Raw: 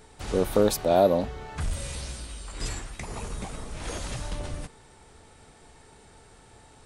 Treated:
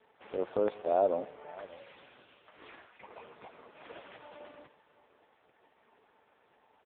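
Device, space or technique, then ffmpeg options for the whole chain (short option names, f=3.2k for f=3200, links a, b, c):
satellite phone: -filter_complex "[0:a]asettb=1/sr,asplit=3[a][b][c];[a]atrim=end=2.774[d];[b]atrim=start=2.77:end=3.34,asetpts=PTS-STARTPTS,afade=t=in:d=0.004:c=qsin,afade=t=out:st=0.566:d=0.004:c=qsin,bandreject=f=60:t=h:w=6,bandreject=f=120:t=h:w=6,bandreject=f=180:t=h:w=6,bandreject=f=240:t=h:w=6,bandreject=f=300:t=h:w=6,bandreject=f=360:t=h:w=6,bandreject=f=420:t=h:w=6[e];[c]atrim=start=3.336[f];[d][e]acrossfade=d=0.004:c1=hsin:c2=qsin[g];[g][f]acrossfade=d=0.004:c1=qsin:c2=hsin,highpass=370,lowpass=3.3k,aecho=1:1:130|260|390:0.0794|0.0334|0.014,aecho=1:1:581:0.106,volume=-5.5dB" -ar 8000 -c:a libopencore_amrnb -b:a 4750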